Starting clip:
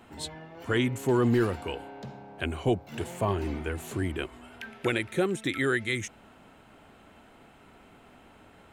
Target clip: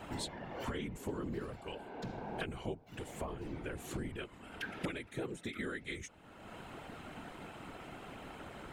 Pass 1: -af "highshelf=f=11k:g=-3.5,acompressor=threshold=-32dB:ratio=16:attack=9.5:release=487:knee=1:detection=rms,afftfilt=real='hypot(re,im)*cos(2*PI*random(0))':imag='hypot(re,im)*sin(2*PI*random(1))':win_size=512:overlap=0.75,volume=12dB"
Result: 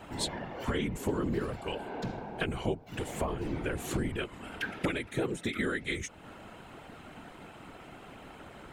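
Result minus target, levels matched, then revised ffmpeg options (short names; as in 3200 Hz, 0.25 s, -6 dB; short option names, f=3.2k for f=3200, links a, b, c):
compressor: peak gain reduction -8.5 dB
-af "highshelf=f=11k:g=-3.5,acompressor=threshold=-41dB:ratio=16:attack=9.5:release=487:knee=1:detection=rms,afftfilt=real='hypot(re,im)*cos(2*PI*random(0))':imag='hypot(re,im)*sin(2*PI*random(1))':win_size=512:overlap=0.75,volume=12dB"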